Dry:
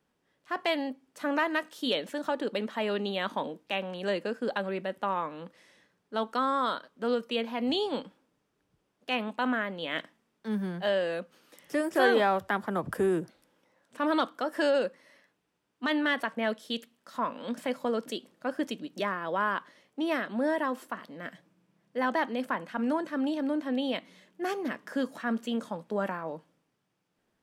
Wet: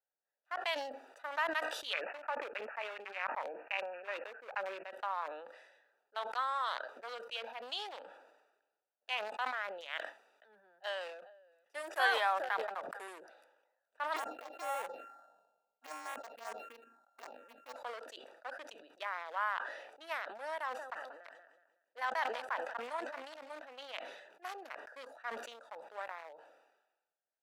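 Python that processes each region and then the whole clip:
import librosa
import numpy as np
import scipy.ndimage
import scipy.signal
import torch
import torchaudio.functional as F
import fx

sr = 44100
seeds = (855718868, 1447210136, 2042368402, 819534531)

y = fx.chain(x, sr, fx.high_shelf(hz=3300.0, db=4.5),
    fx.resample_bad(factor=8, down='none', up='filtered'), at=(1.93, 4.91))
y = fx.chain(y, sr, fx.echo_single(ms=438, db=-13.0),
    fx.band_widen(depth_pct=40), at=(9.98, 13.08))
y = fx.chain(y, sr, fx.sample_sort(block=32),
    fx.env_phaser(low_hz=330.0, high_hz=4700.0, full_db=-23.0),
    fx.tilt_shelf(db=9.5, hz=680.0), at=(14.16, 17.76))
y = fx.chain(y, sr, fx.peak_eq(hz=6600.0, db=6.5, octaves=1.0),
    fx.echo_feedback(ms=185, feedback_pct=43, wet_db=-12.0), at=(20.59, 23.59))
y = fx.wiener(y, sr, points=41)
y = scipy.signal.sosfilt(scipy.signal.butter(4, 750.0, 'highpass', fs=sr, output='sos'), y)
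y = fx.sustainer(y, sr, db_per_s=53.0)
y = y * librosa.db_to_amplitude(-4.0)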